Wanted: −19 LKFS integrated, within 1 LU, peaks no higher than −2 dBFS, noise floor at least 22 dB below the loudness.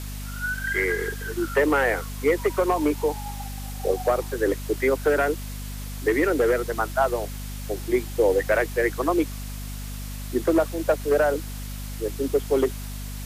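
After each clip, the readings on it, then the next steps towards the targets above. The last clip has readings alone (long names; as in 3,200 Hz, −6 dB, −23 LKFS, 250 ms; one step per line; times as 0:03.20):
mains hum 50 Hz; hum harmonics up to 250 Hz; level of the hum −31 dBFS; background noise floor −34 dBFS; target noise floor −47 dBFS; integrated loudness −24.5 LKFS; sample peak −10.5 dBFS; target loudness −19.0 LKFS
→ hum removal 50 Hz, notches 5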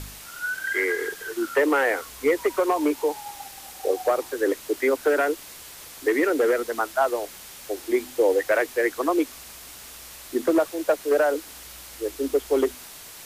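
mains hum none found; background noise floor −43 dBFS; target noise floor −47 dBFS
→ broadband denoise 6 dB, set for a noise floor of −43 dBFS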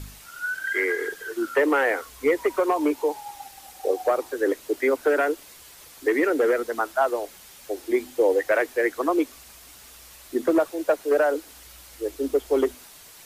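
background noise floor −48 dBFS; integrated loudness −24.5 LKFS; sample peak −10.5 dBFS; target loudness −19.0 LKFS
→ level +5.5 dB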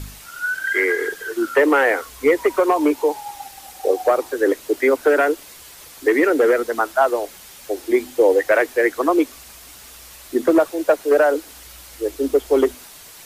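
integrated loudness −19.0 LKFS; sample peak −5.0 dBFS; background noise floor −42 dBFS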